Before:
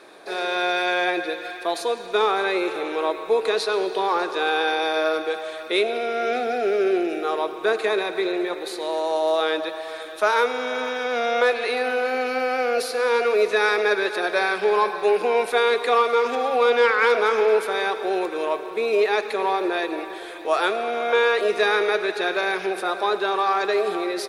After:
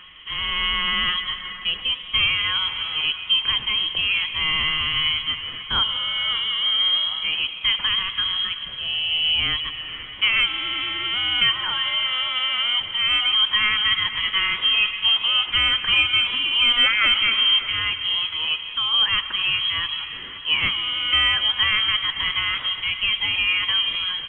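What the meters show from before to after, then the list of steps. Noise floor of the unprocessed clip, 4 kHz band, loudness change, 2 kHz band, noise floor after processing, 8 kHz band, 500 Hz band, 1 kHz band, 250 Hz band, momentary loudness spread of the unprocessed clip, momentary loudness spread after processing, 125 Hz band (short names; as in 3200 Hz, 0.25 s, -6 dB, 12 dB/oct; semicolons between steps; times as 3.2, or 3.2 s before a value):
-35 dBFS, +15.5 dB, +3.0 dB, +2.0 dB, -35 dBFS, under -40 dB, -28.0 dB, -9.0 dB, -13.5 dB, 7 LU, 7 LU, n/a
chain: reverse echo 1.118 s -22 dB; inverted band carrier 3600 Hz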